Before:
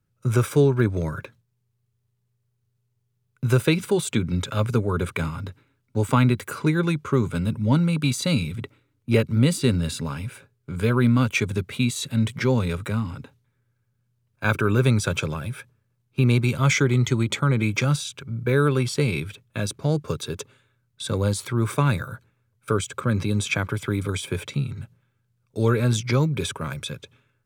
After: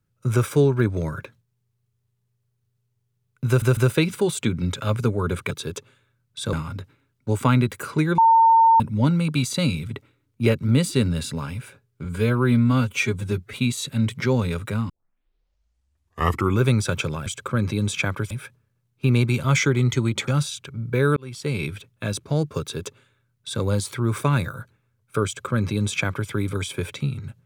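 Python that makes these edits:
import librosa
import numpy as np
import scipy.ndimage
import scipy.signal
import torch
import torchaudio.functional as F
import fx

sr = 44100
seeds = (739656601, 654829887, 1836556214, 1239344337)

y = fx.edit(x, sr, fx.stutter(start_s=3.47, slice_s=0.15, count=3),
    fx.bleep(start_s=6.86, length_s=0.62, hz=907.0, db=-11.0),
    fx.stretch_span(start_s=10.73, length_s=0.99, factor=1.5),
    fx.tape_start(start_s=13.08, length_s=1.74),
    fx.cut(start_s=17.42, length_s=0.39),
    fx.fade_in_span(start_s=18.7, length_s=0.51),
    fx.duplicate(start_s=20.14, length_s=1.02, to_s=5.21),
    fx.duplicate(start_s=22.79, length_s=1.04, to_s=15.45), tone=tone)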